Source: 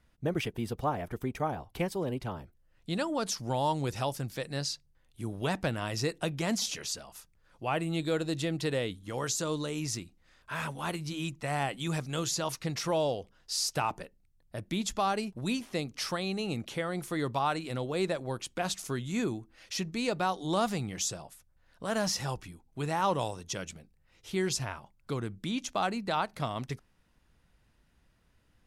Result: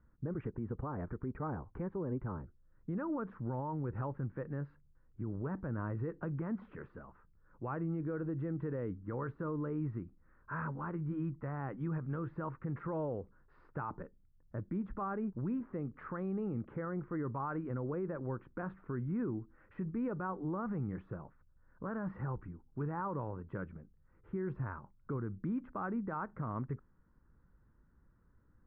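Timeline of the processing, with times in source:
0:05.33–0:05.95: high-shelf EQ 2,500 Hz −8.5 dB
whole clip: Butterworth low-pass 1,500 Hz 36 dB per octave; parametric band 700 Hz −12.5 dB 0.62 octaves; brickwall limiter −31 dBFS; level +1 dB

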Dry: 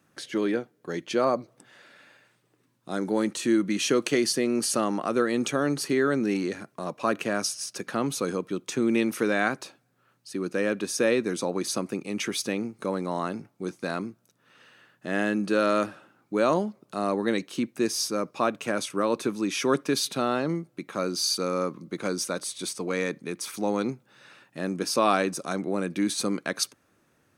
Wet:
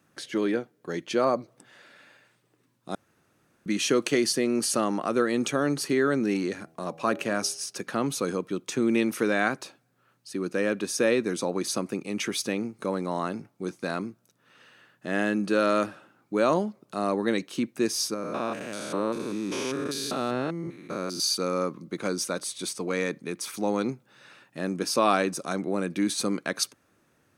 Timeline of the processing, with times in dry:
0:02.95–0:03.66: fill with room tone
0:06.54–0:07.79: hum removal 81.15 Hz, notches 10
0:18.14–0:21.20: spectrum averaged block by block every 200 ms

